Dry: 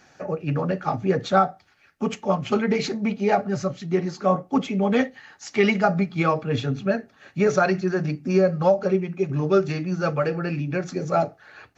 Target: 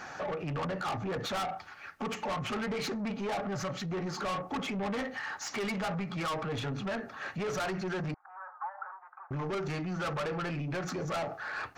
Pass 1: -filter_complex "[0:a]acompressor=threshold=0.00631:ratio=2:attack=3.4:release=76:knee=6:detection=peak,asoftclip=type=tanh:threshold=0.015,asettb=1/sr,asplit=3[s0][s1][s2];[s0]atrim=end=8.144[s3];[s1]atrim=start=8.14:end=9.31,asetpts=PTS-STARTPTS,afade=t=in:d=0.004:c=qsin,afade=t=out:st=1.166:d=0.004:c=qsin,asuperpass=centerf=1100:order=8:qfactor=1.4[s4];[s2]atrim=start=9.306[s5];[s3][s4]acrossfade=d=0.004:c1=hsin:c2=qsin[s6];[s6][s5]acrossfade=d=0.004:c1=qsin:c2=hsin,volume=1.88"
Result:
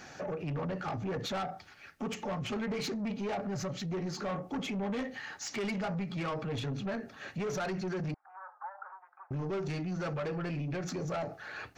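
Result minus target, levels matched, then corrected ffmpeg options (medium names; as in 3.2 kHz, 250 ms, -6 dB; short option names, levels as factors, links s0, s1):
1 kHz band -3.0 dB
-filter_complex "[0:a]acompressor=threshold=0.00631:ratio=2:attack=3.4:release=76:knee=6:detection=peak,equalizer=f=1100:t=o:w=1.5:g=11.5,asoftclip=type=tanh:threshold=0.015,asettb=1/sr,asplit=3[s0][s1][s2];[s0]atrim=end=8.144[s3];[s1]atrim=start=8.14:end=9.31,asetpts=PTS-STARTPTS,afade=t=in:d=0.004:c=qsin,afade=t=out:st=1.166:d=0.004:c=qsin,asuperpass=centerf=1100:order=8:qfactor=1.4[s4];[s2]atrim=start=9.306[s5];[s3][s4]acrossfade=d=0.004:c1=hsin:c2=qsin[s6];[s6][s5]acrossfade=d=0.004:c1=qsin:c2=hsin,volume=1.88"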